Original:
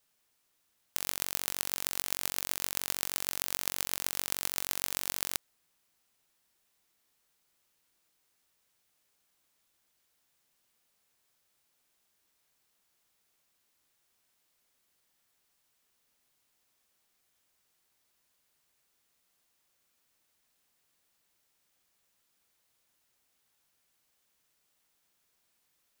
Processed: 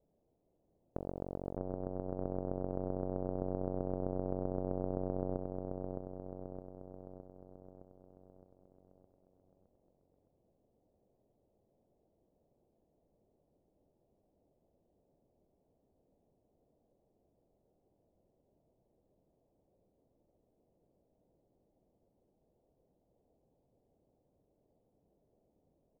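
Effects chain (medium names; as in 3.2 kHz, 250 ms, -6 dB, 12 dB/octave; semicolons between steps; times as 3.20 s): steep low-pass 660 Hz 36 dB/octave; compression, threshold -46 dBFS, peak gain reduction 5.5 dB; feedback delay 614 ms, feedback 58%, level -4 dB; trim +13 dB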